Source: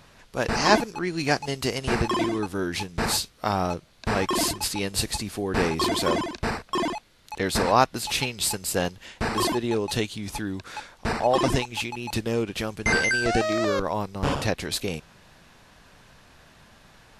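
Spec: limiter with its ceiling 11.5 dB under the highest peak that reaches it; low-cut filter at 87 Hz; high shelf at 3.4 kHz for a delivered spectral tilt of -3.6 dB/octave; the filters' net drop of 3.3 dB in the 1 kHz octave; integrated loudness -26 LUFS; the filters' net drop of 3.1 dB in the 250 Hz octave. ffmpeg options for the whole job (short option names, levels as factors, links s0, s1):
-af "highpass=87,equalizer=f=250:t=o:g=-4,equalizer=f=1000:t=o:g=-4.5,highshelf=f=3400:g=6,volume=1.19,alimiter=limit=0.211:level=0:latency=1"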